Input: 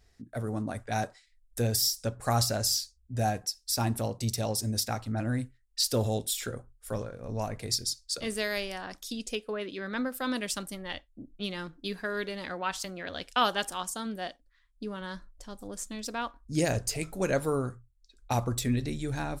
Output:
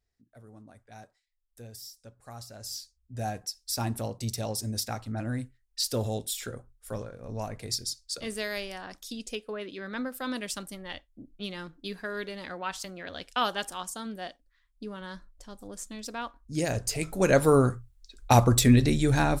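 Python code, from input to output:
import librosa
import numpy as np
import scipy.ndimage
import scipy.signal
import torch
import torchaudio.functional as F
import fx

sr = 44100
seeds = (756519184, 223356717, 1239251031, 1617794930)

y = fx.gain(x, sr, db=fx.line((2.49, -18.0), (2.76, -9.0), (3.59, -2.0), (16.63, -2.0), (17.58, 9.5)))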